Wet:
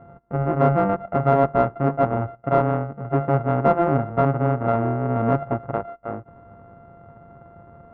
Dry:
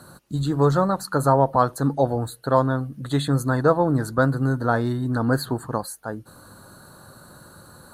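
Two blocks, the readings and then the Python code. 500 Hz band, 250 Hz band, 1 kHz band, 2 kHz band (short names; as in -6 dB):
+1.5 dB, -1.0 dB, +1.5 dB, -4.5 dB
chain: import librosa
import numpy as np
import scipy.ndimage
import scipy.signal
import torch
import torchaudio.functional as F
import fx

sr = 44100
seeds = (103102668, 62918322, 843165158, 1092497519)

p1 = np.r_[np.sort(x[:len(x) // 64 * 64].reshape(-1, 64), axis=1).ravel(), x[len(x) // 64 * 64:]]
p2 = scipy.signal.sosfilt(scipy.signal.butter(4, 1300.0, 'lowpass', fs=sr, output='sos'), p1)
p3 = 10.0 ** (-18.0 / 20.0) * np.tanh(p2 / 10.0 ** (-18.0 / 20.0))
y = p2 + F.gain(torch.from_numpy(p3), -11.0).numpy()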